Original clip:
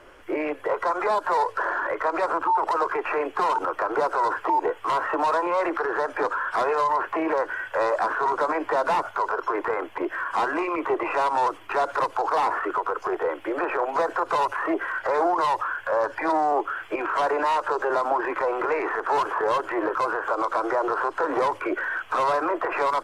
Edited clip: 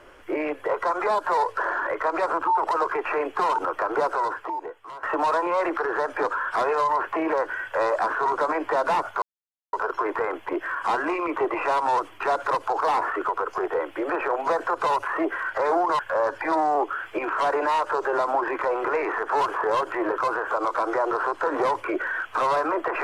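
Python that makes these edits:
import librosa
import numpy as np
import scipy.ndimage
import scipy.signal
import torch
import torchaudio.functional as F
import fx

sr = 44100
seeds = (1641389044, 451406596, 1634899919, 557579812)

y = fx.edit(x, sr, fx.fade_out_to(start_s=4.1, length_s=0.93, curve='qua', floor_db=-16.0),
    fx.insert_silence(at_s=9.22, length_s=0.51),
    fx.cut(start_s=15.48, length_s=0.28), tone=tone)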